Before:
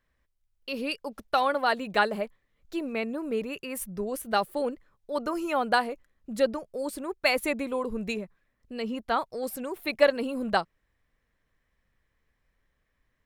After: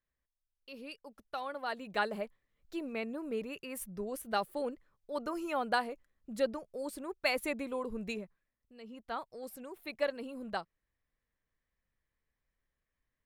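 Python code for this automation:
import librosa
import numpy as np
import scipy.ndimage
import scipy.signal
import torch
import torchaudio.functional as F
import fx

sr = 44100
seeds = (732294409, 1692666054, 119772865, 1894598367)

y = fx.gain(x, sr, db=fx.line((1.45, -15.0), (2.14, -7.0), (8.21, -7.0), (8.74, -19.5), (9.13, -12.0)))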